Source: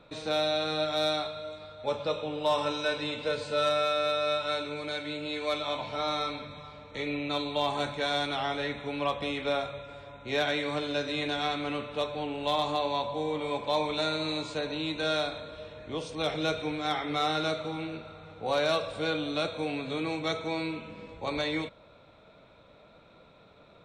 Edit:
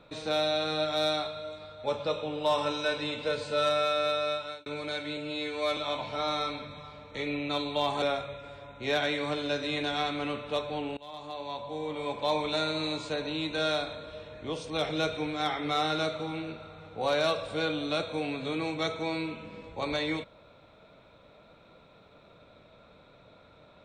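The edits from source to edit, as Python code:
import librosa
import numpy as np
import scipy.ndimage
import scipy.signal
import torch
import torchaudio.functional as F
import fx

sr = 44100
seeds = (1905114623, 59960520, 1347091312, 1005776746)

y = fx.edit(x, sr, fx.fade_out_span(start_s=4.02, length_s=0.64, curve='qsin'),
    fx.stretch_span(start_s=5.17, length_s=0.4, factor=1.5),
    fx.cut(start_s=7.82, length_s=1.65),
    fx.fade_in_from(start_s=12.42, length_s=1.38, floor_db=-23.0), tone=tone)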